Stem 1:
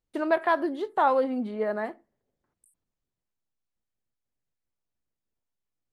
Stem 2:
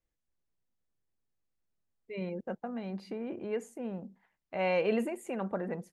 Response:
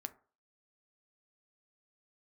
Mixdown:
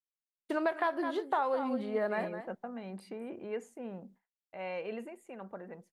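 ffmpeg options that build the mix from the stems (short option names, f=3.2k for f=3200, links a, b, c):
-filter_complex "[0:a]adelay=350,volume=0.5dB,asplit=2[a][b];[b]volume=-12dB[c];[1:a]highshelf=f=3.9k:g=-6,volume=-1dB,afade=t=out:st=4.11:d=0.45:silence=0.446684,asplit=2[d][e];[e]volume=-20.5dB[f];[2:a]atrim=start_sample=2205[g];[f][g]afir=irnorm=-1:irlink=0[h];[c]aecho=0:1:208:1[i];[a][d][h][i]amix=inputs=4:normalize=0,agate=range=-33dB:threshold=-52dB:ratio=3:detection=peak,lowshelf=f=410:g=-6,acompressor=threshold=-27dB:ratio=6"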